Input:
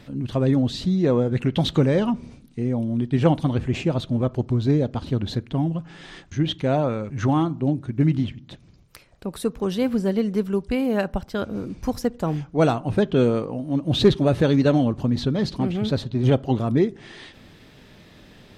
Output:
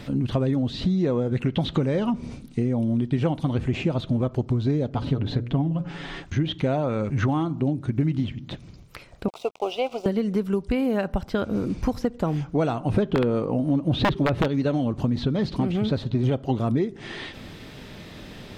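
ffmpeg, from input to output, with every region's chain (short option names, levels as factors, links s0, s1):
-filter_complex "[0:a]asettb=1/sr,asplit=3[s0][s1][s2];[s0]atrim=end=4.894[s3];[s1]atrim=start=4.89:end=6.23,asetpts=PTS-STARTPTS,afade=t=in:d=0.004:c=qsin,afade=t=out:st=1.336:d=0.004:c=qsin,highshelf=f=4600:g=-9,bandreject=f=60:t=h:w=6,bandreject=f=120:t=h:w=6,bandreject=f=180:t=h:w=6,bandreject=f=240:t=h:w=6,bandreject=f=300:t=h:w=6,bandreject=f=360:t=h:w=6,bandreject=f=420:t=h:w=6,bandreject=f=480:t=h:w=6,bandreject=f=540:t=h:w=6,bandreject=f=600:t=h:w=6,aecho=1:1:7.1:0.42,atrim=end_sample=59094[s4];[s2]atrim=start=6.226[s5];[s3][s4]acrossfade=d=0.004:c1=hsin:c2=qsin[s6];[s6][s5]acrossfade=d=0.004:c1=qsin:c2=hsin,asettb=1/sr,asplit=3[s7][s8][s9];[s7]atrim=end=9.284[s10];[s8]atrim=start=9.28:end=10.06,asetpts=PTS-STARTPTS,afade=t=in:d=0.004:c=qsin,afade=t=out:st=0.776:d=0.004:c=qsin,highpass=f=450:w=0.5412,highpass=f=450:w=1.3066,equalizer=f=470:t=q:w=4:g=-5,equalizer=f=710:t=q:w=4:g=10,equalizer=f=1100:t=q:w=4:g=-7,equalizer=f=1600:t=q:w=4:g=7,equalizer=f=2600:t=q:w=4:g=6,equalizer=f=4000:t=q:w=4:g=-9,lowpass=f=6100:w=0.5412,lowpass=f=6100:w=1.3066,aeval=exprs='sgn(val(0))*max(abs(val(0))-0.00447,0)':c=same,asuperstop=centerf=1700:order=4:qfactor=1.4[s11];[s9]atrim=start=10.056[s12];[s10][s11]acrossfade=d=0.004:c1=hsin:c2=qsin[s13];[s13][s12]acrossfade=d=0.004:c1=qsin:c2=hsin,asettb=1/sr,asplit=3[s14][s15][s16];[s14]atrim=end=12.944[s17];[s15]atrim=start=12.94:end=14.48,asetpts=PTS-STARTPTS,afade=t=in:d=0.004:c=qsin,afade=t=out:st=1.536:d=0.004:c=qsin,highshelf=f=2800:g=-5.5,acontrast=86,aeval=exprs='(mod(1.68*val(0)+1,2)-1)/1.68':c=same[s18];[s16]atrim=start=14.476[s19];[s17][s18]acrossfade=d=0.004:c1=hsin:c2=qsin[s20];[s20][s19]acrossfade=d=0.004:c1=qsin:c2=hsin,acompressor=threshold=0.0398:ratio=6,bandreject=f=1700:w=28,acrossover=split=3900[s21][s22];[s22]acompressor=threshold=0.00141:ratio=4:attack=1:release=60[s23];[s21][s23]amix=inputs=2:normalize=0,volume=2.37"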